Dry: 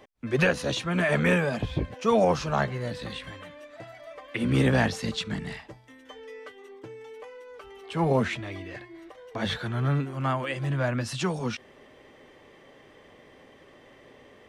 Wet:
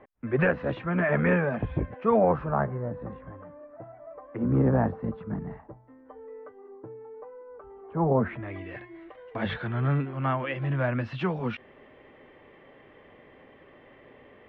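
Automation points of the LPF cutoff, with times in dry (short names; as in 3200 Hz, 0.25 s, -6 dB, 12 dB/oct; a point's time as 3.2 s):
LPF 24 dB/oct
1.99 s 2000 Hz
2.9 s 1200 Hz
8.11 s 1200 Hz
8.65 s 2800 Hz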